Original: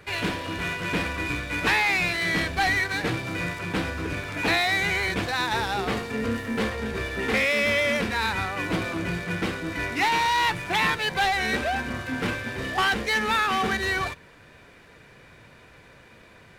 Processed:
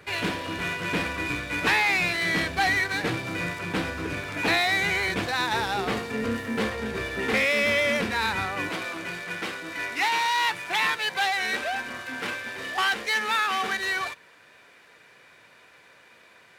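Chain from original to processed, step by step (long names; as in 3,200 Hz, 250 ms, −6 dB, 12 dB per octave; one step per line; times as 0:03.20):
high-pass filter 110 Hz 6 dB per octave, from 0:08.69 780 Hz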